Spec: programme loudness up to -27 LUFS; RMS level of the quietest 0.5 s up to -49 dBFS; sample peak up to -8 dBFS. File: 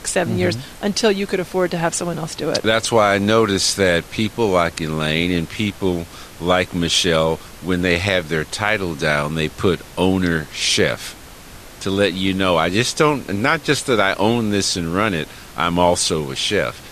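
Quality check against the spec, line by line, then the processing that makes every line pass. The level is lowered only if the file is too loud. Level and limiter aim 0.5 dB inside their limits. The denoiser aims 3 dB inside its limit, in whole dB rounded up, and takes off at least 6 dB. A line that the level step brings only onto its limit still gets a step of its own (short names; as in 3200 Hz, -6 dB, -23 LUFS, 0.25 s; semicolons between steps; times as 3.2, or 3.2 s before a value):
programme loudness -18.5 LUFS: fail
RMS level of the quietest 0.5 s -39 dBFS: fail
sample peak -1.5 dBFS: fail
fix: denoiser 6 dB, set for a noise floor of -39 dBFS; gain -9 dB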